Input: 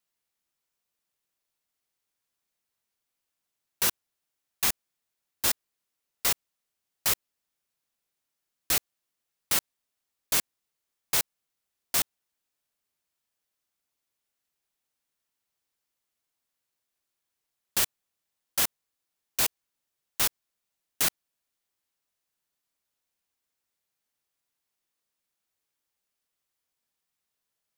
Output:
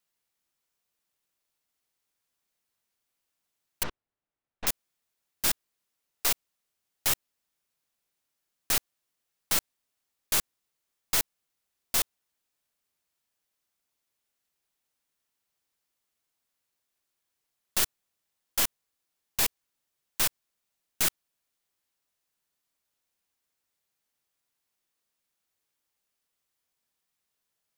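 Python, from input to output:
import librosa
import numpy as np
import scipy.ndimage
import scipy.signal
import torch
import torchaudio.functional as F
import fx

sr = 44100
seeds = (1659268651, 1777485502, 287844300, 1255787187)

y = np.minimum(x, 2.0 * 10.0 ** (-24.0 / 20.0) - x)
y = fx.spacing_loss(y, sr, db_at_10k=41, at=(3.83, 4.67))
y = y * 10.0 ** (1.5 / 20.0)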